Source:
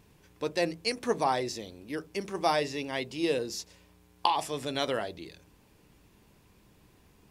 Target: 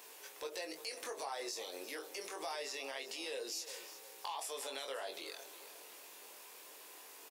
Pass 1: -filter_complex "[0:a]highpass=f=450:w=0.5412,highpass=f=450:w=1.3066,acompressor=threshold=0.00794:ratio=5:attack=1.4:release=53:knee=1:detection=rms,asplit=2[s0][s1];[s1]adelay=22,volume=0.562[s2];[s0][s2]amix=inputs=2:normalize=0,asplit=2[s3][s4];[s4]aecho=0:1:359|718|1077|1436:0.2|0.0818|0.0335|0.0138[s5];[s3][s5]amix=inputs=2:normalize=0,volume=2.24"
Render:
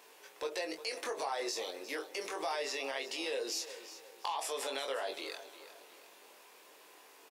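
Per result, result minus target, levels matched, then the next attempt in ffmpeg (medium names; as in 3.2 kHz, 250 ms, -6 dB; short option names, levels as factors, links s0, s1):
compression: peak gain reduction -7 dB; 8 kHz band -4.0 dB
-filter_complex "[0:a]highpass=f=450:w=0.5412,highpass=f=450:w=1.3066,acompressor=threshold=0.00355:ratio=5:attack=1.4:release=53:knee=1:detection=rms,asplit=2[s0][s1];[s1]adelay=22,volume=0.562[s2];[s0][s2]amix=inputs=2:normalize=0,asplit=2[s3][s4];[s4]aecho=0:1:359|718|1077|1436:0.2|0.0818|0.0335|0.0138[s5];[s3][s5]amix=inputs=2:normalize=0,volume=2.24"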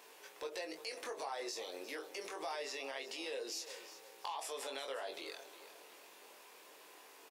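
8 kHz band -3.5 dB
-filter_complex "[0:a]highpass=f=450:w=0.5412,highpass=f=450:w=1.3066,highshelf=f=5500:g=10,acompressor=threshold=0.00355:ratio=5:attack=1.4:release=53:knee=1:detection=rms,asplit=2[s0][s1];[s1]adelay=22,volume=0.562[s2];[s0][s2]amix=inputs=2:normalize=0,asplit=2[s3][s4];[s4]aecho=0:1:359|718|1077|1436:0.2|0.0818|0.0335|0.0138[s5];[s3][s5]amix=inputs=2:normalize=0,volume=2.24"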